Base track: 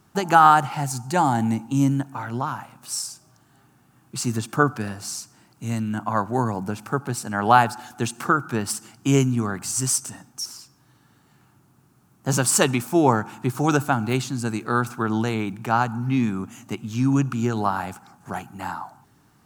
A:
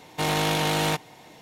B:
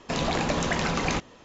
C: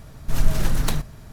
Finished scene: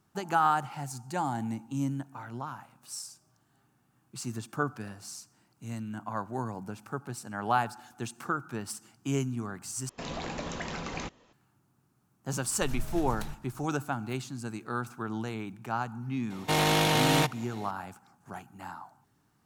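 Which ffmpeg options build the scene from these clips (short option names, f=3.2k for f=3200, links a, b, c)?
-filter_complex "[0:a]volume=-11.5dB,asplit=2[a][b];[a]atrim=end=9.894[c];[2:a]atrim=end=1.44,asetpts=PTS-STARTPTS,volume=-10.5dB[d];[b]atrim=start=11.326[e];[3:a]atrim=end=1.32,asetpts=PTS-STARTPTS,volume=-16dB,afade=t=in:d=0.004:c=hsin,afade=t=out:st=1.316:d=0.004:c=hsin,adelay=12330[f];[1:a]atrim=end=1.41,asetpts=PTS-STARTPTS,volume=-0.5dB,afade=t=in:d=0.004:c=hsin,afade=t=out:st=1.406:d=0.004:c=hsin,adelay=16300[g];[c][d]acrossfade=d=0.004:c1=hsin:c2=hsin[h];[h][e]acrossfade=d=0.004:c1=hsin:c2=hsin[i];[i][f][g]amix=inputs=3:normalize=0"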